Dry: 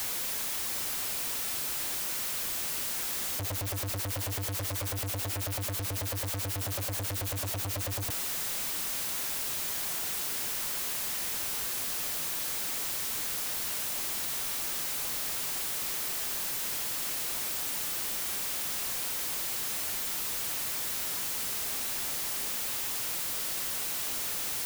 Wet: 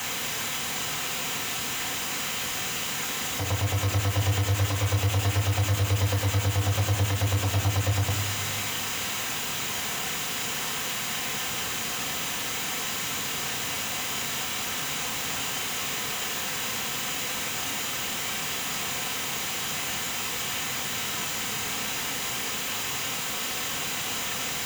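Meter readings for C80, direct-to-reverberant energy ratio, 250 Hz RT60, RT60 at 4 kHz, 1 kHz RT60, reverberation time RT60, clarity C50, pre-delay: 11.5 dB, 2.5 dB, 2.2 s, 1.2 s, 1.7 s, 1.7 s, 10.5 dB, 3 ms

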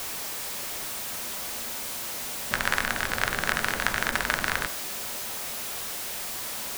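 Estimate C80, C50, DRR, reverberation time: 17.5 dB, 13.5 dB, 8.0 dB, 0.50 s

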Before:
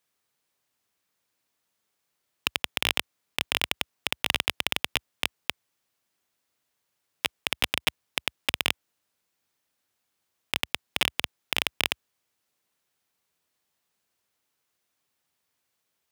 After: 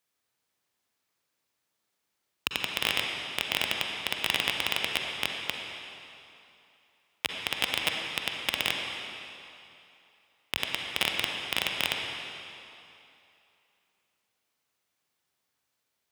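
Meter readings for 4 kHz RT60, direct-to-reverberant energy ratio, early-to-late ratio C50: 2.5 s, 1.0 dB, 1.5 dB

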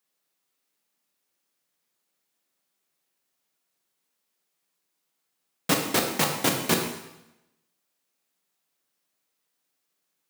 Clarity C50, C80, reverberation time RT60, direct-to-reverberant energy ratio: 5.0 dB, 7.5 dB, 0.90 s, 2.0 dB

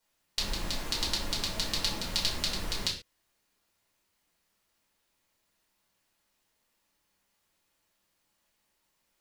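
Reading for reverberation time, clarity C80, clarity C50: not exponential, 12.0 dB, 8.0 dB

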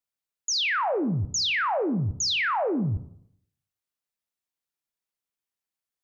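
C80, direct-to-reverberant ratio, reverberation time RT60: 17.0 dB, 10.0 dB, 0.70 s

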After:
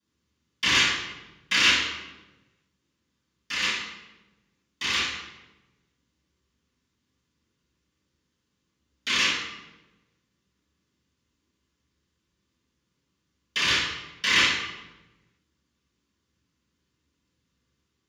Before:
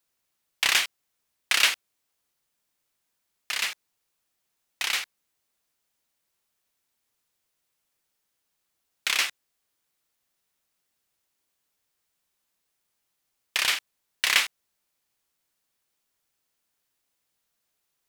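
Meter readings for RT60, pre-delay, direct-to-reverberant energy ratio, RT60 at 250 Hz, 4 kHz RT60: 1.1 s, 3 ms, -16.0 dB, 1.5 s, 0.80 s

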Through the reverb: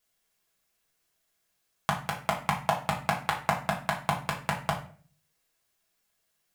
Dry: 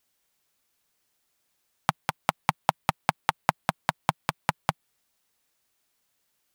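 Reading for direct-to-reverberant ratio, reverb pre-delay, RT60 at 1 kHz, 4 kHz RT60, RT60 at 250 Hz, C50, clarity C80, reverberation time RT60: -2.5 dB, 5 ms, 0.40 s, 0.35 s, 0.55 s, 9.0 dB, 13.0 dB, 0.45 s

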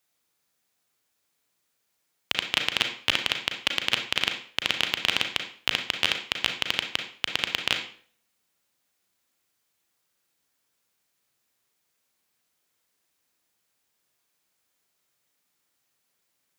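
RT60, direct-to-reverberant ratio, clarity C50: 0.50 s, 4.0 dB, 7.5 dB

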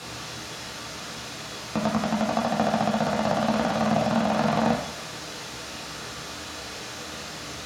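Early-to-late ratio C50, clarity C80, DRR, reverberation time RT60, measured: 4.5 dB, 8.0 dB, -4.0 dB, 0.70 s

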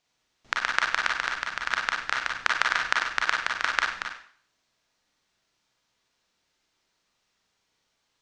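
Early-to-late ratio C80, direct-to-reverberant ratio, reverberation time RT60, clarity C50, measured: 7.5 dB, -1.0 dB, 0.50 s, 3.5 dB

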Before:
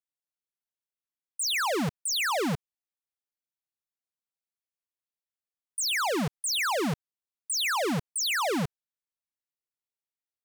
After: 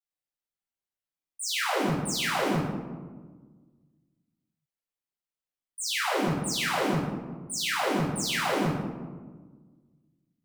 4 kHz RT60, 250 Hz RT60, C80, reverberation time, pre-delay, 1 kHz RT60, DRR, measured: 0.65 s, 2.0 s, 3.0 dB, 1.5 s, 3 ms, 1.3 s, -10.5 dB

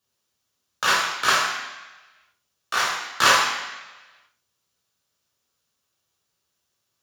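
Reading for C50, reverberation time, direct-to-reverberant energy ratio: 3.0 dB, 1.1 s, -4.5 dB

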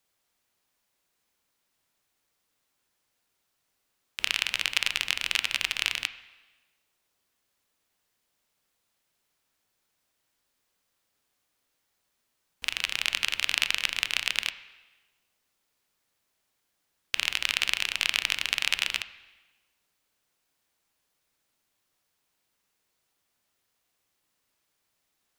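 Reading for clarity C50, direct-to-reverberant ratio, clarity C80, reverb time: 14.0 dB, 11.5 dB, 15.5 dB, 1.2 s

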